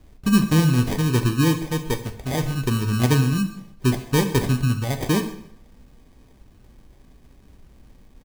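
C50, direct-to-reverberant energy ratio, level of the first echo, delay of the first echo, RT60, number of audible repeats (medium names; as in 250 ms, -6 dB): 10.5 dB, 6.0 dB, -20.0 dB, 134 ms, 0.70 s, 1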